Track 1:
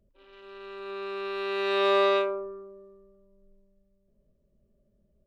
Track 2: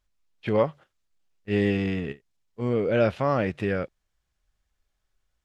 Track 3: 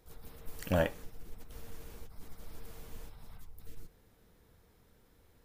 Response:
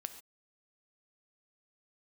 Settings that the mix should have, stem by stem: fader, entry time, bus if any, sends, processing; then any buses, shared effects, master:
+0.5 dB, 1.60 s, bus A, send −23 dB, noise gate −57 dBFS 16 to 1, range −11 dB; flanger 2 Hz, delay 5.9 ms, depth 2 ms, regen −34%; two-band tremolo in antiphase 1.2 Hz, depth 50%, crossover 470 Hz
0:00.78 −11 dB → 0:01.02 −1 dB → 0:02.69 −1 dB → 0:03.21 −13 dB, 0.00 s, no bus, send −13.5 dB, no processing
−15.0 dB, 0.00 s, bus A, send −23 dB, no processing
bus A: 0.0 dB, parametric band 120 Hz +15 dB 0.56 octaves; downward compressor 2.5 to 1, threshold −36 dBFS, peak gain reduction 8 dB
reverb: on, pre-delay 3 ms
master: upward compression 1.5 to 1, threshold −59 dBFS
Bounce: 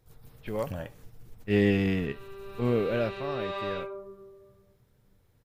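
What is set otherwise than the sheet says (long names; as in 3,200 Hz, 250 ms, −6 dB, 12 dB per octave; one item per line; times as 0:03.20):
stem 3 −15.0 dB → −5.0 dB
master: missing upward compression 1.5 to 1, threshold −59 dBFS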